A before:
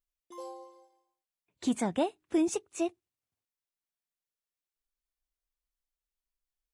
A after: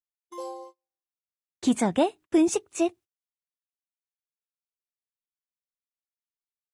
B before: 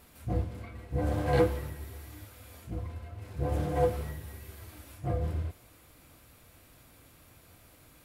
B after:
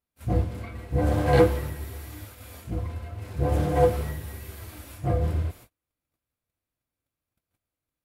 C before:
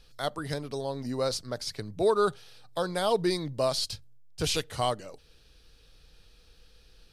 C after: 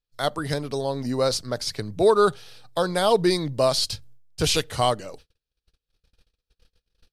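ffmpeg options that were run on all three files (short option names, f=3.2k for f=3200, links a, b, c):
-af "agate=range=-38dB:threshold=-51dB:ratio=16:detection=peak,volume=6.5dB"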